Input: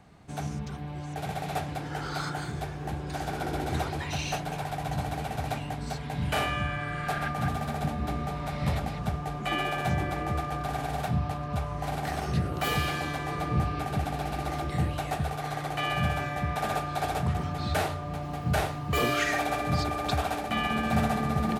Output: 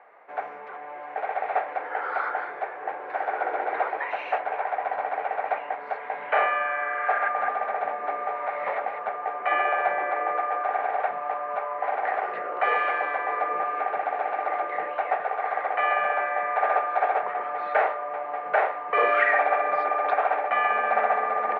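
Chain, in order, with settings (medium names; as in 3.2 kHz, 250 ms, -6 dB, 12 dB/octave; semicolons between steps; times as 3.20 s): elliptic band-pass 490–2100 Hz, stop band 80 dB; trim +8.5 dB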